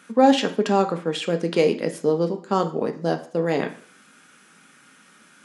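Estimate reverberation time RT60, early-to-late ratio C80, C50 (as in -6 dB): 0.50 s, 17.0 dB, 13.0 dB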